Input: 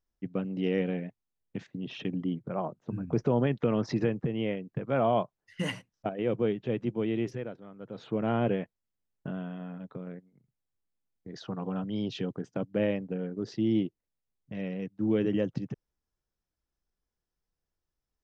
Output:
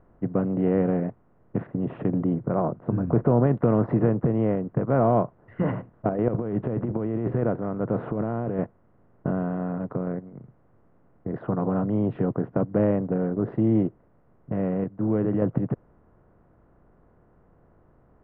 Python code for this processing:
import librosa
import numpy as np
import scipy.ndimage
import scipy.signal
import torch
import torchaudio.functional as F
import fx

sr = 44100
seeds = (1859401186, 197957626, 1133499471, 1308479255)

y = fx.over_compress(x, sr, threshold_db=-37.0, ratio=-1.0, at=(6.28, 8.59))
y = fx.edit(y, sr, fx.clip_gain(start_s=14.84, length_s=0.58, db=-5.0), tone=tone)
y = fx.bin_compress(y, sr, power=0.6)
y = scipy.signal.sosfilt(scipy.signal.butter(4, 1500.0, 'lowpass', fs=sr, output='sos'), y)
y = fx.low_shelf(y, sr, hz=120.0, db=10.0)
y = y * 10.0 ** (2.0 / 20.0)